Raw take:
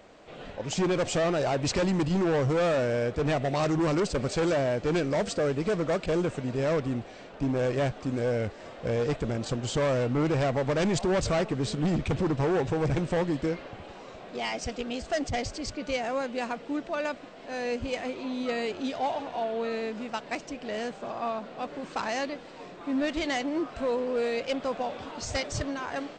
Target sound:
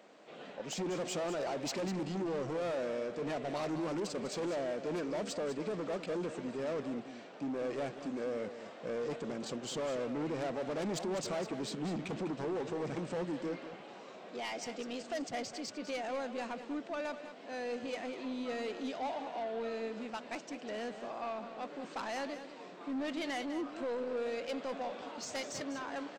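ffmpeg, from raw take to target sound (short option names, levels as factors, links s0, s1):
-af "highpass=f=180:w=0.5412,highpass=f=180:w=1.3066,asoftclip=type=tanh:threshold=0.0473,aecho=1:1:199:0.282,volume=0.531"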